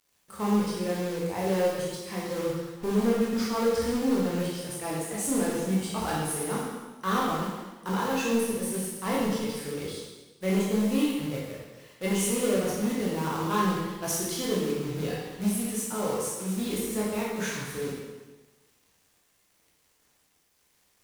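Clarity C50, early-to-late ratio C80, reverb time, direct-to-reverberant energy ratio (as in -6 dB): -0.5 dB, 2.5 dB, 1.2 s, -5.5 dB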